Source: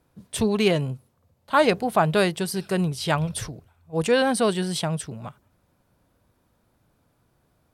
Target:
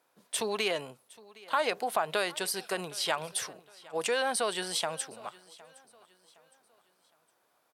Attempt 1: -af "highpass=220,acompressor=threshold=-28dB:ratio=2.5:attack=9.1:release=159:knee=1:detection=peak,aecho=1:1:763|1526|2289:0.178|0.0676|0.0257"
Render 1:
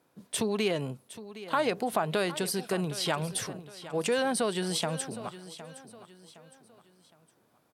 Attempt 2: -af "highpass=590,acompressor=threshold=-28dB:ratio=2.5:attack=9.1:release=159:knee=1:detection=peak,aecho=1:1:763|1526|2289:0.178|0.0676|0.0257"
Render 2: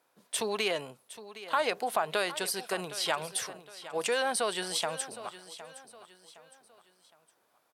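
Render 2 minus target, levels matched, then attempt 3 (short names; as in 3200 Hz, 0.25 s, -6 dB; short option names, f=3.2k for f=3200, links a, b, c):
echo-to-direct +7 dB
-af "highpass=590,acompressor=threshold=-28dB:ratio=2.5:attack=9.1:release=159:knee=1:detection=peak,aecho=1:1:763|1526|2289:0.0794|0.0302|0.0115"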